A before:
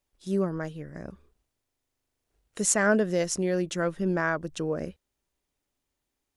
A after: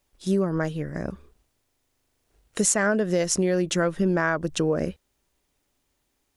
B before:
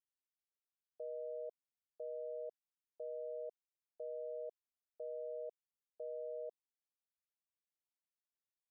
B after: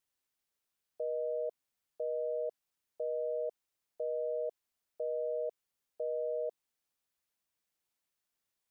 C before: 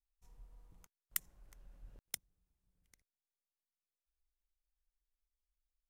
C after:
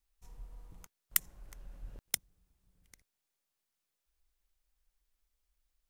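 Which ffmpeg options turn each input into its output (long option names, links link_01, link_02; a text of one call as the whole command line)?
ffmpeg -i in.wav -af "acompressor=threshold=-28dB:ratio=6,volume=9dB" out.wav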